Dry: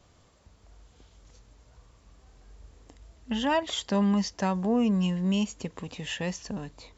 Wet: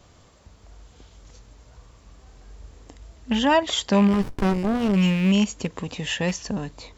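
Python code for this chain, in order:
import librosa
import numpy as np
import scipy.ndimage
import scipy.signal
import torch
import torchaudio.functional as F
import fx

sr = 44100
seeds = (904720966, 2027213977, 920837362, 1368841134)

y = fx.rattle_buzz(x, sr, strikes_db=-31.0, level_db=-29.0)
y = fx.running_max(y, sr, window=65, at=(4.07, 4.95), fade=0.02)
y = y * 10.0 ** (7.0 / 20.0)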